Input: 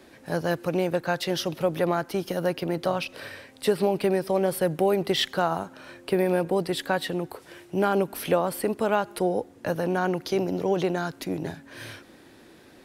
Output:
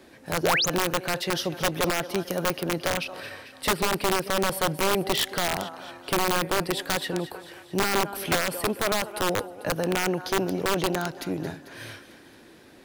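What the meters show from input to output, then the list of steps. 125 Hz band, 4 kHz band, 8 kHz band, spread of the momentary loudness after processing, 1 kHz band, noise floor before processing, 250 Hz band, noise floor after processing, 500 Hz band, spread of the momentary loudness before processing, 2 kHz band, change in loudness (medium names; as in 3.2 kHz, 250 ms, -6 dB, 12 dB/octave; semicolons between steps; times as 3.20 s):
-1.5 dB, +5.0 dB, +9.5 dB, 11 LU, +1.5 dB, -52 dBFS, -2.0 dB, -51 dBFS, -3.5 dB, 11 LU, +5.0 dB, 0.0 dB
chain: thinning echo 222 ms, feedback 60%, high-pass 610 Hz, level -12.5 dB; integer overflow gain 16.5 dB; painted sound rise, 0.43–0.66 s, 300–7500 Hz -23 dBFS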